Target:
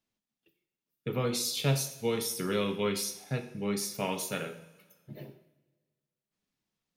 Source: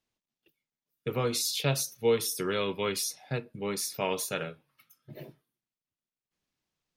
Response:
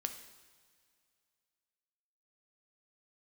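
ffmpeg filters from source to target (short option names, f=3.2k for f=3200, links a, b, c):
-filter_complex "[0:a]equalizer=f=200:w=1.8:g=6.5[a];[1:a]atrim=start_sample=2205,asetrate=70560,aresample=44100[b];[a][b]afir=irnorm=-1:irlink=0,volume=2.5dB"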